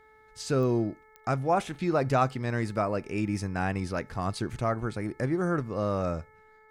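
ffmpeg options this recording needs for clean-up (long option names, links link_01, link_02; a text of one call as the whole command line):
ffmpeg -i in.wav -af "adeclick=threshold=4,bandreject=frequency=433.9:width_type=h:width=4,bandreject=frequency=867.8:width_type=h:width=4,bandreject=frequency=1301.7:width_type=h:width=4,bandreject=frequency=1735.6:width_type=h:width=4,bandreject=frequency=2169.5:width_type=h:width=4" out.wav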